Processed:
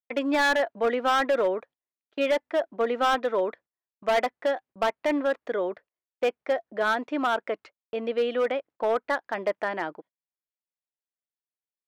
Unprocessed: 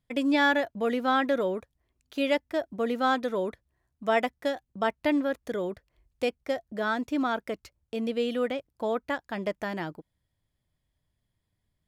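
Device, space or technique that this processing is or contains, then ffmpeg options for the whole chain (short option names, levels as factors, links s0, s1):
walkie-talkie: -af "highpass=440,lowpass=2300,asoftclip=type=hard:threshold=0.0596,agate=range=0.0447:threshold=0.00178:ratio=16:detection=peak,volume=2.11"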